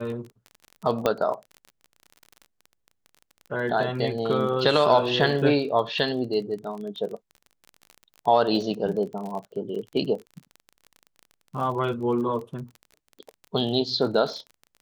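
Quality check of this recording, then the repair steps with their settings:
crackle 28/s -33 dBFS
1.06 pop -9 dBFS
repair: de-click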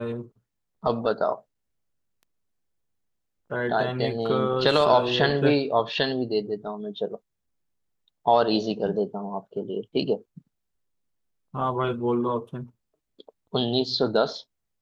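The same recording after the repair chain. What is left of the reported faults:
none

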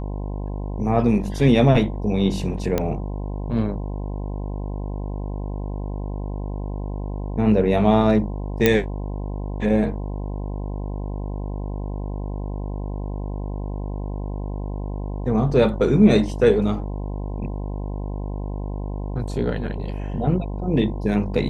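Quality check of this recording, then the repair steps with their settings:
buzz 50 Hz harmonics 21 -28 dBFS
2.78 pop -8 dBFS
8.66 pop -2 dBFS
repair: de-click; de-hum 50 Hz, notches 21

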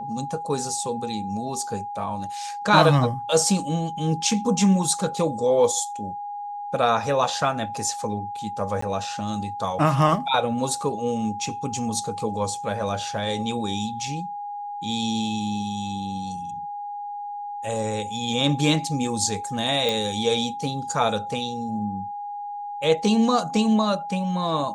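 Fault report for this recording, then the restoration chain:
tone 820 Hz -30 dBFS
8.81–8.82 gap 14 ms
19.89 pop -10 dBFS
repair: de-click; notch 820 Hz, Q 30; interpolate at 8.81, 14 ms

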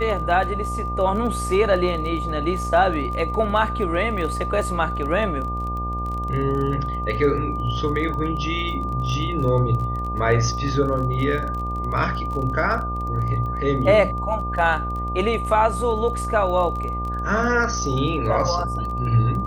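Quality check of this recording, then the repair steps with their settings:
buzz 60 Hz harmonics 16 -28 dBFS
crackle 22/s -29 dBFS
tone 1200 Hz -27 dBFS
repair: de-click; de-hum 60 Hz, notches 16; notch 1200 Hz, Q 30

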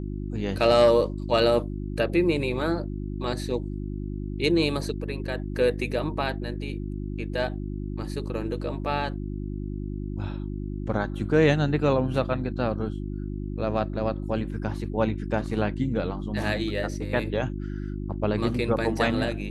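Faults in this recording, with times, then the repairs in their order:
hum 50 Hz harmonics 7 -32 dBFS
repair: de-hum 50 Hz, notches 7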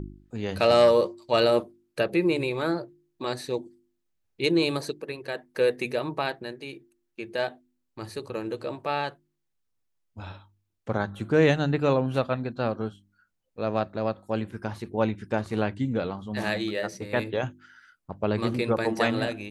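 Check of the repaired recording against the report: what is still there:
none

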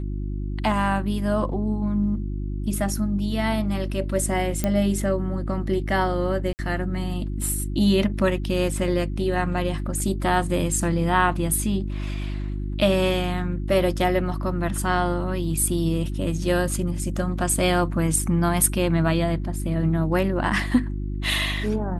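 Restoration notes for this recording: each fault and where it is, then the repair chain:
hum 50 Hz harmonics 7 -28 dBFS
4.64 pop -9 dBFS
6.53–6.59 gap 59 ms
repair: de-click; de-hum 50 Hz, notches 7; interpolate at 6.53, 59 ms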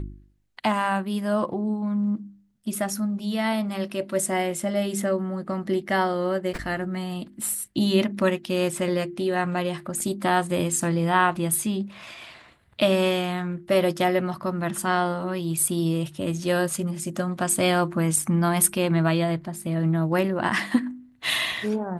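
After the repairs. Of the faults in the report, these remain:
none

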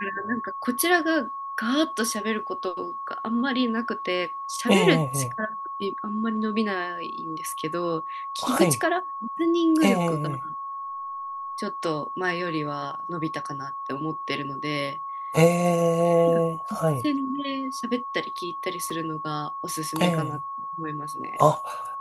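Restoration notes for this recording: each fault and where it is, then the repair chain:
tone 1100 Hz -31 dBFS
18.9 gap 3.3 ms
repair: notch 1100 Hz, Q 30; interpolate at 18.9, 3.3 ms

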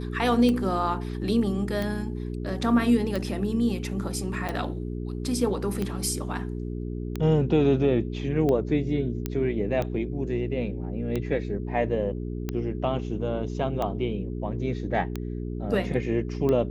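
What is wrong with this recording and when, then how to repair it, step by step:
hum 60 Hz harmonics 7 -32 dBFS
tick 45 rpm -16 dBFS
4.48–4.49 gap 5.5 ms
9.26 pop -14 dBFS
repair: de-click; de-hum 60 Hz, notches 7; interpolate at 4.48, 5.5 ms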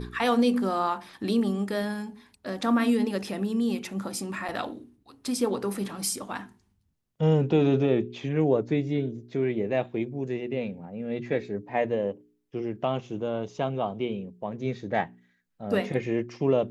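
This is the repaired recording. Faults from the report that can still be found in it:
none

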